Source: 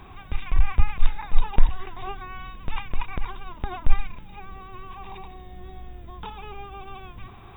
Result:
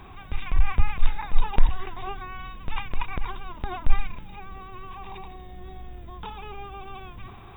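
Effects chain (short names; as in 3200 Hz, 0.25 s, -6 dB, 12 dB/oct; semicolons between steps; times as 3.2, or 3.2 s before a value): transient shaper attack -2 dB, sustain +2 dB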